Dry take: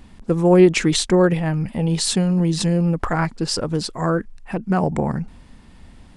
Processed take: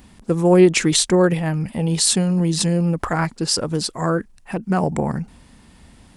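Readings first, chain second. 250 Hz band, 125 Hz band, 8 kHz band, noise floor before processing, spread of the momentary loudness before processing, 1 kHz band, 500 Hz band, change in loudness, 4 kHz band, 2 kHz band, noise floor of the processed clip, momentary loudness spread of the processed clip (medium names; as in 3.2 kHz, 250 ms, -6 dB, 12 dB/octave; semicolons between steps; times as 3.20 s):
-0.5 dB, -0.5 dB, +5.5 dB, -46 dBFS, 11 LU, 0.0 dB, 0.0 dB, +0.5 dB, +2.5 dB, +0.5 dB, -50 dBFS, 11 LU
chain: high-pass 57 Hz 6 dB/octave; treble shelf 7.4 kHz +11 dB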